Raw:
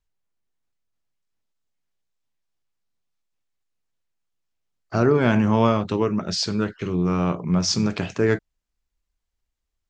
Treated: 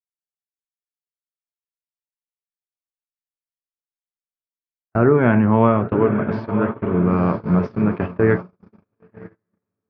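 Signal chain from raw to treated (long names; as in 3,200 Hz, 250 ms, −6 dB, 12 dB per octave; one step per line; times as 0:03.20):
low-pass filter 2,100 Hz 24 dB per octave
feedback delay with all-pass diffusion 975 ms, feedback 59%, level −8 dB
noise gate −24 dBFS, range −51 dB
level +3.5 dB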